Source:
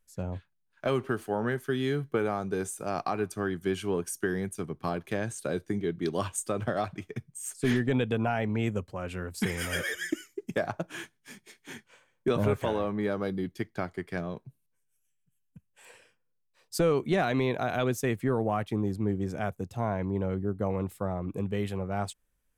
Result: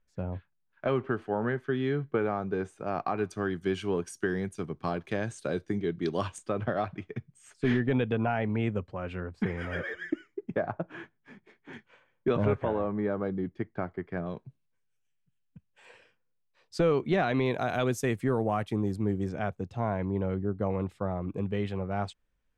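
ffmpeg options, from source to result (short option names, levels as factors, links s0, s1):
-af "asetnsamples=n=441:p=0,asendcmd='3.18 lowpass f 5600;6.38 lowpass f 3000;9.2 lowpass f 1600;11.73 lowpass f 2800;12.55 lowpass f 1600;14.26 lowpass f 4200;17.46 lowpass f 11000;19.29 lowpass f 4200',lowpass=2500"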